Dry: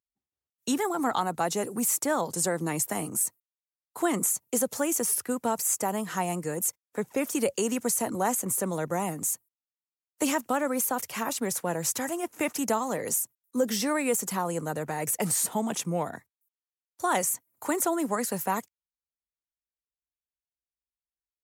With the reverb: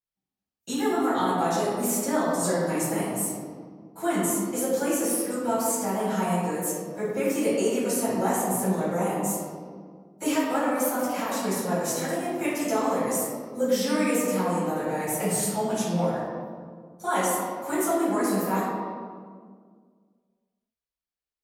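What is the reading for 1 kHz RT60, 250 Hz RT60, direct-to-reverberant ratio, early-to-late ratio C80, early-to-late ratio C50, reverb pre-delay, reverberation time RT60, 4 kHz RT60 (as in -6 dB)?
1.7 s, 2.5 s, -13.0 dB, 0.5 dB, -1.5 dB, 4 ms, 1.8 s, 1.1 s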